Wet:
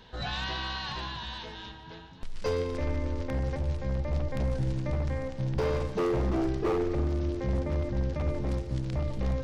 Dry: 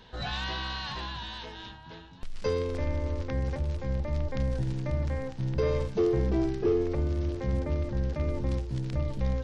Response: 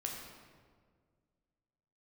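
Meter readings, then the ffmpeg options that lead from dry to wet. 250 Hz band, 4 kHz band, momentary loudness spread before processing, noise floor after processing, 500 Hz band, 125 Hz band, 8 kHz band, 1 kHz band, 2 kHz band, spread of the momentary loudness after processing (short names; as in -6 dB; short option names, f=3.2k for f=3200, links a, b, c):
-0.5 dB, +0.5 dB, 11 LU, -46 dBFS, -1.0 dB, -0.5 dB, n/a, +2.0 dB, +0.5 dB, 9 LU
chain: -filter_complex "[0:a]aeval=exprs='0.0794*(abs(mod(val(0)/0.0794+3,4)-2)-1)':c=same,asplit=2[a][b];[1:a]atrim=start_sample=2205,adelay=144[c];[b][c]afir=irnorm=-1:irlink=0,volume=-12dB[d];[a][d]amix=inputs=2:normalize=0"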